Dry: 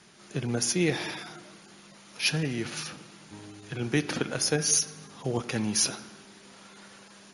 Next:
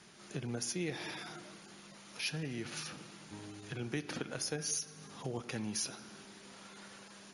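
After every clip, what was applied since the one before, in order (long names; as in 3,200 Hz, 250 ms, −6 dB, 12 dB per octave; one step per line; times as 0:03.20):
downward compressor 2 to 1, threshold −39 dBFS, peak gain reduction 10.5 dB
level −2.5 dB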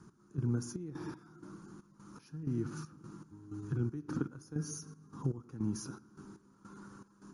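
drawn EQ curve 150 Hz 0 dB, 210 Hz −5 dB, 300 Hz 0 dB, 660 Hz −24 dB, 1,000 Hz −8 dB, 1,400 Hz −9 dB, 2,000 Hz −29 dB, 3,500 Hz −30 dB, 6,400 Hz −17 dB, 11,000 Hz −21 dB
gate pattern "x...xxxx..x" 158 BPM −12 dB
level +9.5 dB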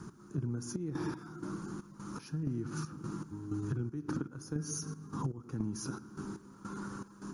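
downward compressor 16 to 1, threshold −42 dBFS, peak gain reduction 15 dB
level +10 dB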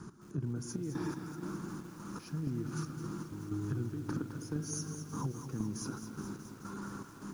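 feedback echo at a low word length 213 ms, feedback 80%, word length 9 bits, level −9.5 dB
level −1 dB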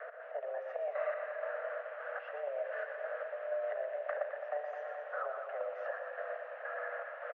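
single-tap delay 120 ms −7.5 dB
single-sideband voice off tune +290 Hz 290–2,400 Hz
multiband upward and downward compressor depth 40%
level +5 dB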